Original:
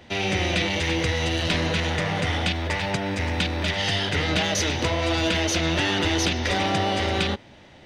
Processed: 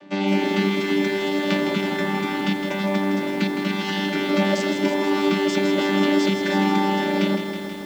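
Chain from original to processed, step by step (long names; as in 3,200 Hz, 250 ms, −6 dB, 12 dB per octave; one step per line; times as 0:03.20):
channel vocoder with a chord as carrier bare fifth, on G3
feedback echo at a low word length 161 ms, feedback 80%, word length 8 bits, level −7 dB
level +4.5 dB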